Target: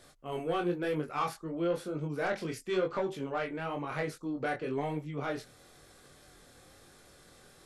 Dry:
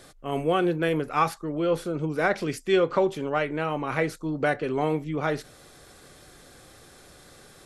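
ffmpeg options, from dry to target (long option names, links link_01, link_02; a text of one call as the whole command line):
ffmpeg -i in.wav -af "aeval=exprs='0.376*(cos(1*acos(clip(val(0)/0.376,-1,1)))-cos(1*PI/2))+0.0473*(cos(5*acos(clip(val(0)/0.376,-1,1)))-cos(5*PI/2))':channel_layout=same,flanger=delay=20:depth=4.5:speed=1,volume=-8dB" out.wav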